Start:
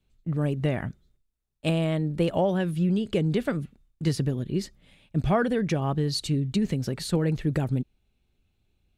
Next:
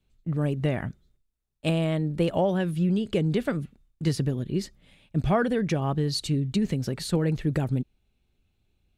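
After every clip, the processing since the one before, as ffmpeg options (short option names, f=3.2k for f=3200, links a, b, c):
-af anull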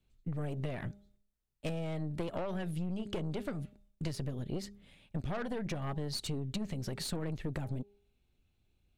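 -af "bandreject=f=202.5:t=h:w=4,bandreject=f=405:t=h:w=4,bandreject=f=607.5:t=h:w=4,bandreject=f=810:t=h:w=4,aeval=exprs='(tanh(15.8*val(0)+0.65)-tanh(0.65))/15.8':c=same,acompressor=threshold=-33dB:ratio=6"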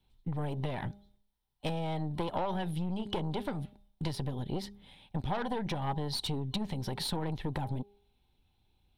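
-af "superequalizer=9b=3.16:13b=2:15b=0.447,volume=2dB"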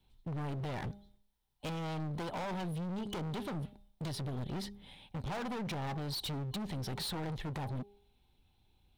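-af "asoftclip=type=hard:threshold=-37.5dB,volume=1.5dB"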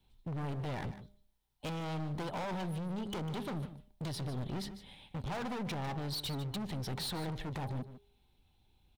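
-af "aecho=1:1:150:0.224"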